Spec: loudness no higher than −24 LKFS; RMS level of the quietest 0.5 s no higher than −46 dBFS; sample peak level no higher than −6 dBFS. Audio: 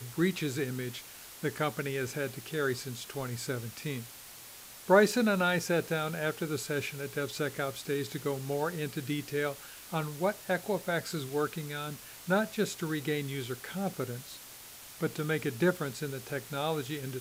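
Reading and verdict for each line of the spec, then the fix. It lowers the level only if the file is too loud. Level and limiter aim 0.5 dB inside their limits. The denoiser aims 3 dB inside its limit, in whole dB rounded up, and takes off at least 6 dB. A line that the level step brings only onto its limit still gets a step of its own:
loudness −32.5 LKFS: in spec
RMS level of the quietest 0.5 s −49 dBFS: in spec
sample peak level −10.0 dBFS: in spec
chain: no processing needed

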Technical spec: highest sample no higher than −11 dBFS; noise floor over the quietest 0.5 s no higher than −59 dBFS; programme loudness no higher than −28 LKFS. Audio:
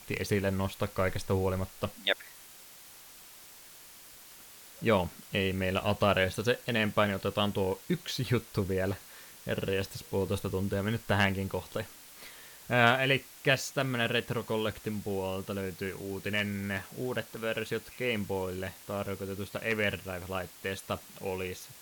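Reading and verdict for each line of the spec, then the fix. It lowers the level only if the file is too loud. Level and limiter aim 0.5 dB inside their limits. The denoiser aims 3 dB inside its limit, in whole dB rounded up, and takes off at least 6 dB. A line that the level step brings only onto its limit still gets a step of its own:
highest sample −8.0 dBFS: out of spec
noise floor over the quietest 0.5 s −52 dBFS: out of spec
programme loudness −31.5 LKFS: in spec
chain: broadband denoise 10 dB, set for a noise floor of −52 dBFS
brickwall limiter −11.5 dBFS

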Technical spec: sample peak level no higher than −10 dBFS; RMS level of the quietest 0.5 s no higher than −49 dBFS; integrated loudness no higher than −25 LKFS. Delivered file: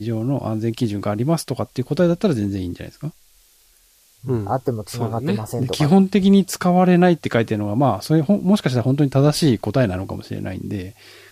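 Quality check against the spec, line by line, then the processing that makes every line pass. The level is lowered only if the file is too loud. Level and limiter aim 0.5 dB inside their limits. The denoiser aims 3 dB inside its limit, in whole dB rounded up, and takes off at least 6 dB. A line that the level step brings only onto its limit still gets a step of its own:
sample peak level −5.5 dBFS: out of spec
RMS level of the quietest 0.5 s −55 dBFS: in spec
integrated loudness −19.5 LKFS: out of spec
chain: level −6 dB

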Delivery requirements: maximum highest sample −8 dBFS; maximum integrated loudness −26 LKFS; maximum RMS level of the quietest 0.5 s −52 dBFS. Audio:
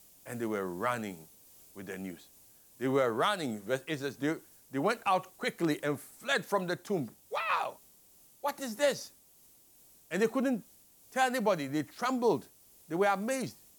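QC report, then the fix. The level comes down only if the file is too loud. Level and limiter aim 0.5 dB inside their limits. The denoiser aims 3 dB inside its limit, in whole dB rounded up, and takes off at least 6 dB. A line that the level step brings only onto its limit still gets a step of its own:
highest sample −16.5 dBFS: in spec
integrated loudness −33.0 LKFS: in spec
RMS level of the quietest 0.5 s −61 dBFS: in spec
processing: no processing needed

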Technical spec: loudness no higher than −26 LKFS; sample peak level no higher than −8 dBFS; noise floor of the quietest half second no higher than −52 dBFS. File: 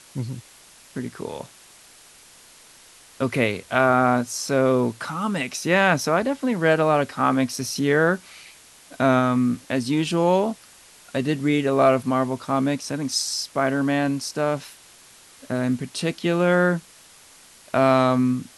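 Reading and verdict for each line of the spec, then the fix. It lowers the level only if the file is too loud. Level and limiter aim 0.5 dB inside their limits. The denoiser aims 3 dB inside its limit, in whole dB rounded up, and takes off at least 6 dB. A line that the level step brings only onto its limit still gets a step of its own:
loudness −22.0 LKFS: out of spec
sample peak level −4.0 dBFS: out of spec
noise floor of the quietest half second −50 dBFS: out of spec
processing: level −4.5 dB

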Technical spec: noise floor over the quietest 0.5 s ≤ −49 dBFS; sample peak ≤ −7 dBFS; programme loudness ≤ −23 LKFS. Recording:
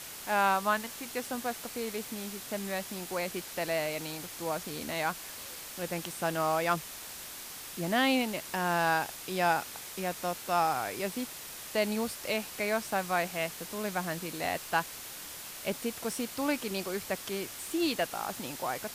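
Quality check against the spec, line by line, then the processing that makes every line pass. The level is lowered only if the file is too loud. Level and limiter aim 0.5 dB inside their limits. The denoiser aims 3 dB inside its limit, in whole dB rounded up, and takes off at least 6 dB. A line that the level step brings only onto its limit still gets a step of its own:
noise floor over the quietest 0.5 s −44 dBFS: out of spec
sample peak −13.5 dBFS: in spec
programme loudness −32.5 LKFS: in spec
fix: broadband denoise 8 dB, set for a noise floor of −44 dBFS

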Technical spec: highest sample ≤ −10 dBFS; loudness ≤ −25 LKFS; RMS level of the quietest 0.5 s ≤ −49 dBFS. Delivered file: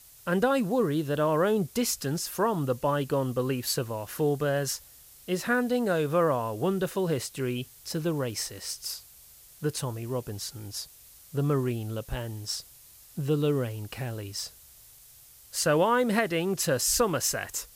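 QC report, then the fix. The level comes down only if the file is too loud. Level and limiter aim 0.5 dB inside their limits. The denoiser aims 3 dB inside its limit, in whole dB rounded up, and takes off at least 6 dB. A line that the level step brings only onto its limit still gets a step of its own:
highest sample −11.0 dBFS: in spec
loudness −28.5 LKFS: in spec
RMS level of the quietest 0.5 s −53 dBFS: in spec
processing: no processing needed

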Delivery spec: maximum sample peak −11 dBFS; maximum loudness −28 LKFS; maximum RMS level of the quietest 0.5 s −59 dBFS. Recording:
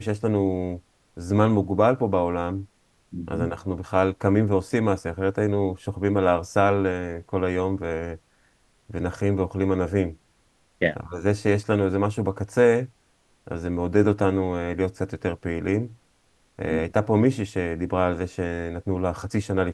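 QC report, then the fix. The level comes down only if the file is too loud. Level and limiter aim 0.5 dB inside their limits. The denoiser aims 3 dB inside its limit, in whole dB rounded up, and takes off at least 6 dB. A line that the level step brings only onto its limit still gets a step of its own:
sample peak −4.5 dBFS: out of spec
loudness −24.5 LKFS: out of spec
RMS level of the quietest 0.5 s −63 dBFS: in spec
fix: level −4 dB
brickwall limiter −11.5 dBFS

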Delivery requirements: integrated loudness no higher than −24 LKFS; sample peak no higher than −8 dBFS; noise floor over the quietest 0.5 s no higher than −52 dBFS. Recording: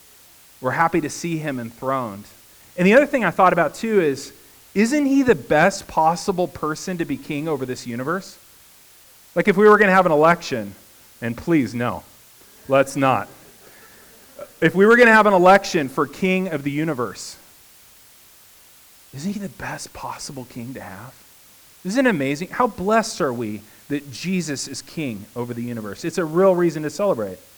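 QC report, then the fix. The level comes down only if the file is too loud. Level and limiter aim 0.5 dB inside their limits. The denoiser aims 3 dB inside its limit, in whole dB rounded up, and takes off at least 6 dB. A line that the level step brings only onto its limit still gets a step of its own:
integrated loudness −19.5 LKFS: out of spec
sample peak −3.5 dBFS: out of spec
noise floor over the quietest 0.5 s −49 dBFS: out of spec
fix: level −5 dB

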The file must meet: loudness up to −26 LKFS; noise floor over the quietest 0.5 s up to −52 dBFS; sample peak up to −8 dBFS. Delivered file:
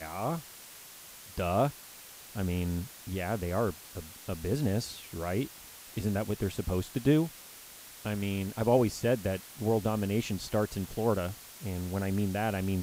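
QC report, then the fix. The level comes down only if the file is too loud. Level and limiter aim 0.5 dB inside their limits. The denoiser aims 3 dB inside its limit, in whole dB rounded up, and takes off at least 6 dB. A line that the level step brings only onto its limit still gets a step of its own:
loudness −32.0 LKFS: in spec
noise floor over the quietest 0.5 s −50 dBFS: out of spec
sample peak −12.5 dBFS: in spec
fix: broadband denoise 6 dB, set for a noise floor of −50 dBFS

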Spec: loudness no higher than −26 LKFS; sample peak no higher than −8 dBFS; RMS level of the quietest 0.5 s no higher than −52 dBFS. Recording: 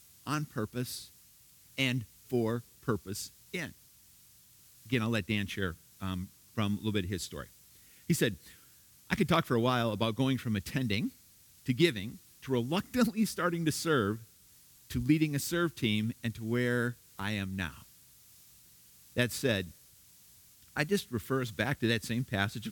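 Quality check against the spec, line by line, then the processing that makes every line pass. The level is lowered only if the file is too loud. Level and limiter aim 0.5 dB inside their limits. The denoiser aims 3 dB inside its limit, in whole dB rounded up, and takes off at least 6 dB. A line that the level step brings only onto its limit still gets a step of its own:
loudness −32.5 LKFS: in spec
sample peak −12.5 dBFS: in spec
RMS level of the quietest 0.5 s −60 dBFS: in spec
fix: no processing needed

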